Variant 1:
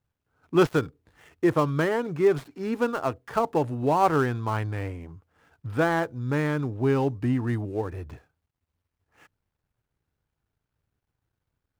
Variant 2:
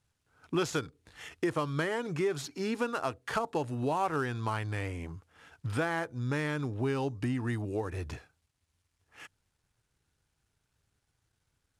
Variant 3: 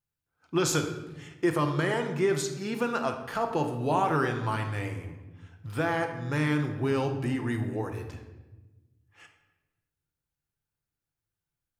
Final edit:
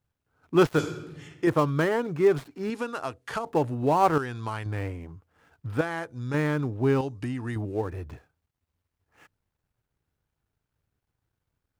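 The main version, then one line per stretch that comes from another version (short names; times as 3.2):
1
0.79–1.47 from 3
2.7–3.46 from 2
4.18–4.66 from 2
5.81–6.34 from 2
7.01–7.56 from 2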